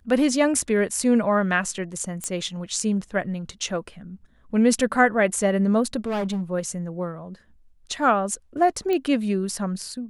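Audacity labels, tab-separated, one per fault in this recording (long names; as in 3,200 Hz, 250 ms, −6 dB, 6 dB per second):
2.240000	2.240000	click −14 dBFS
6.060000	6.420000	clipping −22.5 dBFS
8.930000	8.930000	click −14 dBFS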